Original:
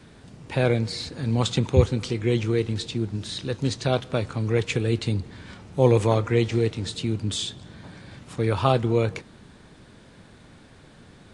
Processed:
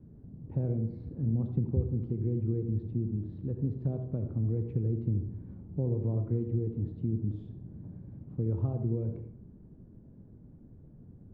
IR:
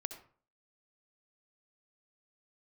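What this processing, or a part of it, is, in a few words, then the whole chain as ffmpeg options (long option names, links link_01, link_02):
television next door: -filter_complex "[0:a]acompressor=threshold=-24dB:ratio=3,lowpass=250[link_01];[1:a]atrim=start_sample=2205[link_02];[link_01][link_02]afir=irnorm=-1:irlink=0,volume=1.5dB"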